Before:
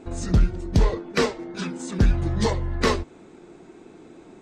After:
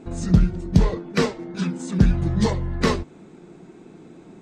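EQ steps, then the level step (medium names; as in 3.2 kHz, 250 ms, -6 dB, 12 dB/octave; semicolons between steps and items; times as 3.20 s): peaking EQ 170 Hz +9.5 dB 0.85 oct; -1.0 dB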